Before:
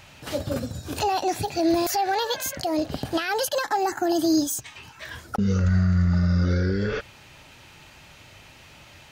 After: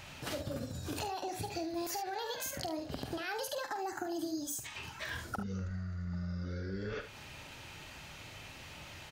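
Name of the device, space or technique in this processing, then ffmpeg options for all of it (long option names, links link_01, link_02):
serial compression, leveller first: -af "acompressor=threshold=-24dB:ratio=6,acompressor=threshold=-35dB:ratio=6,aecho=1:1:47|74:0.335|0.266,volume=-1.5dB"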